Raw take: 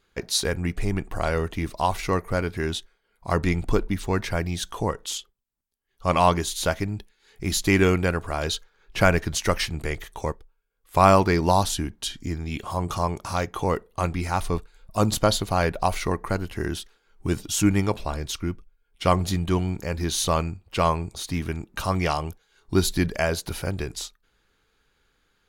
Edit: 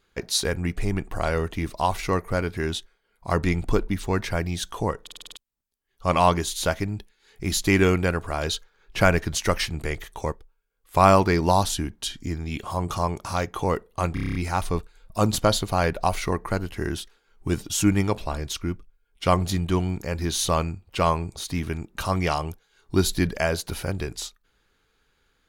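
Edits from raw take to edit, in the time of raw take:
0:05.02: stutter in place 0.05 s, 7 plays
0:14.14: stutter 0.03 s, 8 plays

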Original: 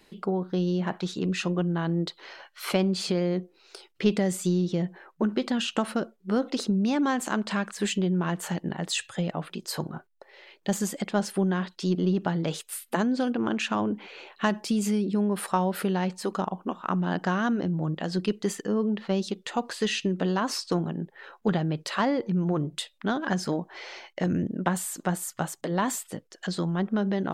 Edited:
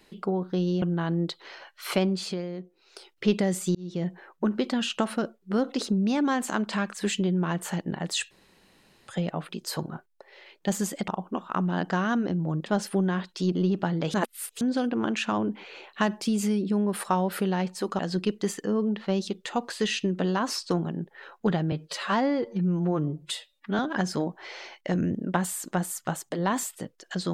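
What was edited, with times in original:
0:00.82–0:01.60: remove
0:02.80–0:03.87: duck −9 dB, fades 0.46 s
0:04.53–0:04.87: fade in
0:09.09: splice in room tone 0.77 s
0:12.57–0:13.04: reverse
0:16.42–0:18.00: move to 0:11.09
0:21.73–0:23.11: time-stretch 1.5×

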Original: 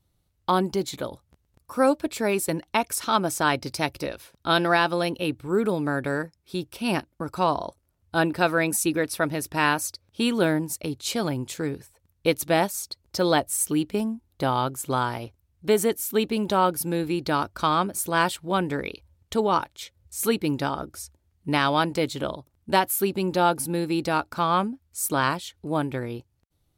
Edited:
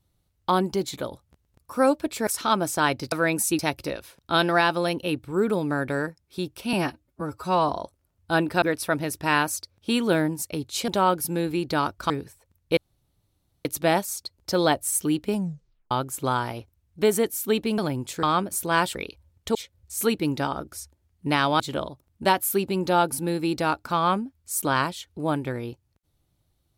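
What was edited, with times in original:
0:02.27–0:02.90: remove
0:06.89–0:07.53: time-stretch 1.5×
0:08.46–0:08.93: move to 0:03.75
0:11.19–0:11.64: swap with 0:16.44–0:17.66
0:12.31: splice in room tone 0.88 s
0:14.00: tape stop 0.57 s
0:18.38–0:18.80: remove
0:19.40–0:19.77: remove
0:21.82–0:22.07: remove

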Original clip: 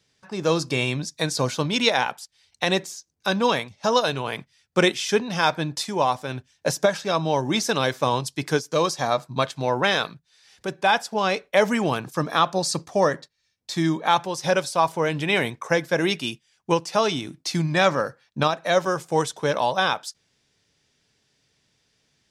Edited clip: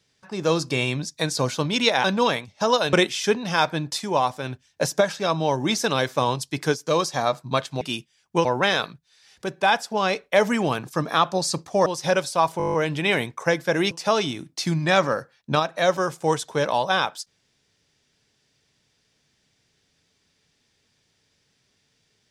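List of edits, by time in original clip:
0:02.04–0:03.27: remove
0:04.16–0:04.78: remove
0:13.07–0:14.26: remove
0:14.98: stutter 0.02 s, 9 plays
0:16.15–0:16.79: move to 0:09.66

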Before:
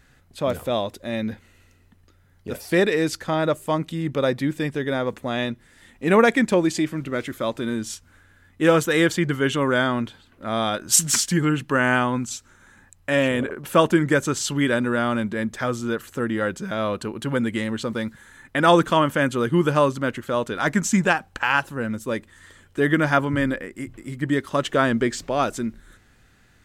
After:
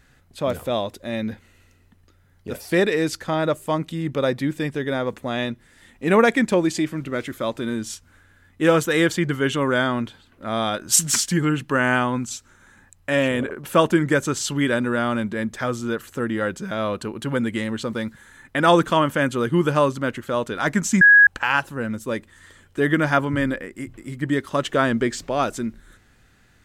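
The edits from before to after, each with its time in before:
0:21.01–0:21.27: beep over 1,660 Hz −7.5 dBFS

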